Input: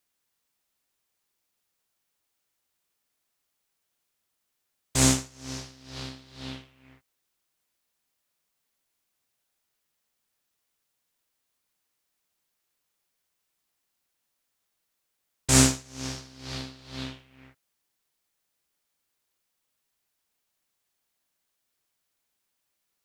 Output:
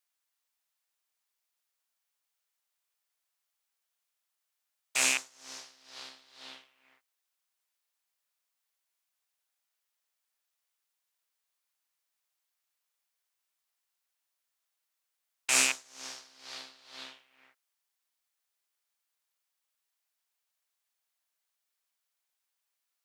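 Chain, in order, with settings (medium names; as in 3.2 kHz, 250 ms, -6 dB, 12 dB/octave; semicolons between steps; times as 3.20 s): rattle on loud lows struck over -31 dBFS, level -11 dBFS; high-pass 700 Hz 12 dB/octave; trim -5 dB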